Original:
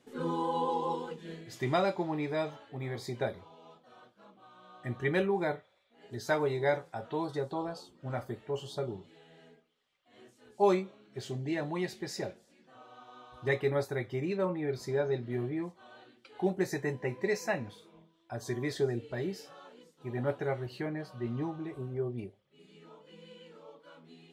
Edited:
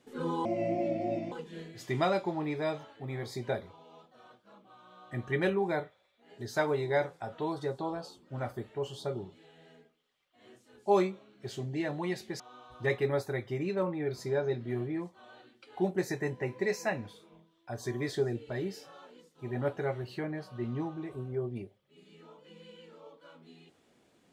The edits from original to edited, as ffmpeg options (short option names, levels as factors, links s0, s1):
-filter_complex "[0:a]asplit=4[s0][s1][s2][s3];[s0]atrim=end=0.454[s4];[s1]atrim=start=0.45:end=1.04,asetpts=PTS-STARTPTS,asetrate=29988,aresample=44100,atrim=end_sample=38263,asetpts=PTS-STARTPTS[s5];[s2]atrim=start=1.036:end=12.122[s6];[s3]atrim=start=13.018[s7];[s4][s5]acrossfade=d=0.004:c1=hsin:c2=hsin[s8];[s8][s6]acrossfade=d=0.004:c1=hsin:c2=hsin[s9];[s9][s7]acrossfade=d=0.004:c1=hsin:c2=hsin"